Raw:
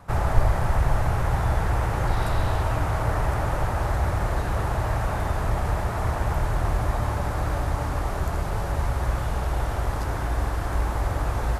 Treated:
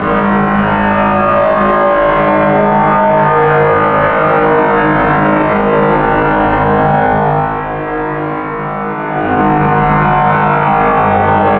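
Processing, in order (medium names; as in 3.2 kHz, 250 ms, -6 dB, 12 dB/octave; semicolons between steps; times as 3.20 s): octave divider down 1 oct, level -1 dB; comb 6.8 ms, depth 75%; compressor with a negative ratio -24 dBFS, ratio -0.5; Paulstretch 34×, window 0.05 s, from 10.59 s; flutter echo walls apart 3.2 m, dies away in 1.3 s; mistuned SSB -120 Hz 270–2800 Hz; loudness maximiser +19 dB; trim -1 dB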